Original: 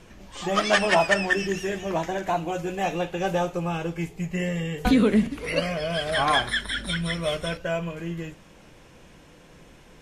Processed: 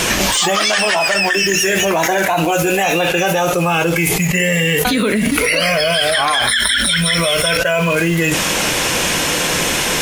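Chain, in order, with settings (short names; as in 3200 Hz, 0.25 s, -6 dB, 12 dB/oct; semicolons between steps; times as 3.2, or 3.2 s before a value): tilt +3 dB/oct; in parallel at -7.5 dB: requantised 6-bit, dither none; on the sum: spectral noise reduction 7 dB; maximiser +9 dB; fast leveller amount 100%; gain -7.5 dB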